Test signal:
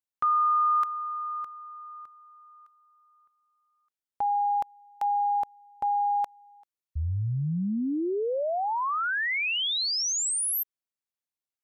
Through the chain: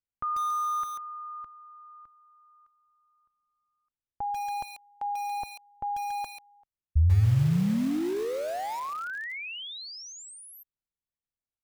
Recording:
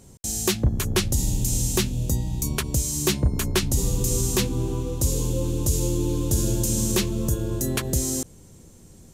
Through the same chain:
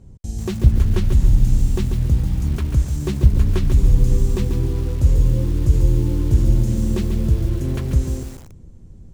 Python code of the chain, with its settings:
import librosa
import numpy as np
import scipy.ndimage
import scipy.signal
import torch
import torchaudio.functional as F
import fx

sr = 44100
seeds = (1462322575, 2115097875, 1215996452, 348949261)

y = fx.riaa(x, sr, side='playback')
y = fx.echo_crushed(y, sr, ms=140, feedback_pct=35, bits=5, wet_db=-6.5)
y = F.gain(torch.from_numpy(y), -6.0).numpy()